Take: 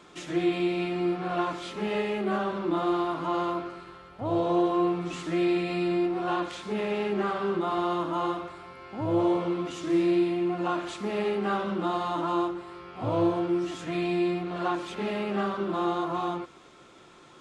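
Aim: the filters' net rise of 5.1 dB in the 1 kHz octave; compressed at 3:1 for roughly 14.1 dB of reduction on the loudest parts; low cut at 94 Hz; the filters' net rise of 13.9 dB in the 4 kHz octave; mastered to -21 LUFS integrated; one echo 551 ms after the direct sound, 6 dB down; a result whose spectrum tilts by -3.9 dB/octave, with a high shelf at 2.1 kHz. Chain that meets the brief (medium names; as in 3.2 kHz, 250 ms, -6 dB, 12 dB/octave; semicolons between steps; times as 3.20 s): high-pass 94 Hz; peaking EQ 1 kHz +4 dB; treble shelf 2.1 kHz +9 dB; peaking EQ 4 kHz +9 dB; compression 3:1, threshold -39 dBFS; delay 551 ms -6 dB; trim +15.5 dB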